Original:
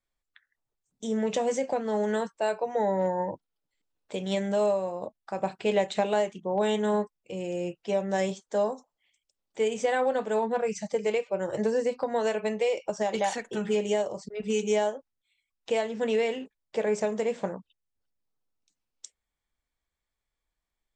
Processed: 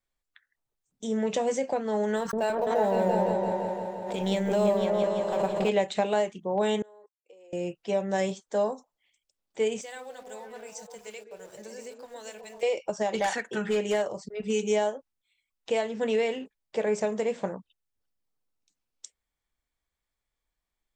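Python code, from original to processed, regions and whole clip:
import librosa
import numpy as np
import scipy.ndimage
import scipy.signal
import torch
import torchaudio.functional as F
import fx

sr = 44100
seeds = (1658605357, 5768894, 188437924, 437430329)

y = fx.chain(x, sr, fx.law_mismatch(coded='A'),
    fx.echo_opening(ms=169, hz=400, octaves=2, feedback_pct=70, wet_db=0),
    fx.pre_swell(db_per_s=44.0), at=(2.16, 5.69))
y = fx.chain(y, sr, fx.level_steps(step_db=23),
    fx.ladder_highpass(hz=380.0, resonance_pct=40), at=(6.82, 7.53))
y = fx.chain(y, sr, fx.pre_emphasis(coefficient=0.9),
    fx.sample_gate(floor_db=-54.5),
    fx.echo_stepped(ms=126, hz=300.0, octaves=0.7, feedback_pct=70, wet_db=-0.5), at=(9.81, 12.63))
y = fx.chain(y, sr, fx.highpass(hz=87.0, slope=6),
    fx.peak_eq(hz=1600.0, db=8.0, octaves=0.83),
    fx.overload_stage(gain_db=20.5), at=(13.2, 14.12))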